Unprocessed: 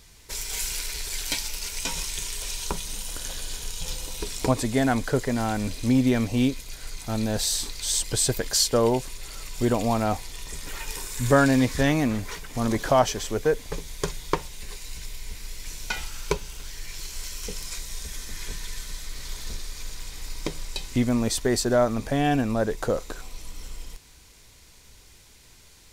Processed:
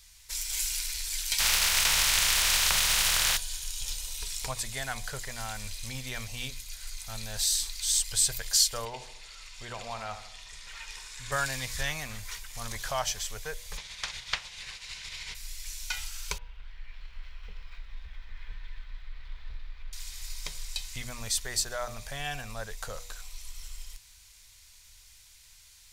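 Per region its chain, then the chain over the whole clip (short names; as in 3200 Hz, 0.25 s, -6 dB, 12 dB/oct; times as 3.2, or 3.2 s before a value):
1.38–3.36 spectral contrast lowered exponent 0.27 + LPF 2200 Hz 6 dB/oct + fast leveller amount 70%
8.85–11.32 Bessel low-pass 3900 Hz + low shelf 120 Hz -9.5 dB + feedback echo 76 ms, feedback 53%, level -11 dB
13.76–15.34 spectral limiter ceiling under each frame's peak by 25 dB + LPF 3700 Hz
16.38–19.93 median filter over 5 samples + air absorption 490 m
whole clip: passive tone stack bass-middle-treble 10-0-10; de-hum 121.1 Hz, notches 8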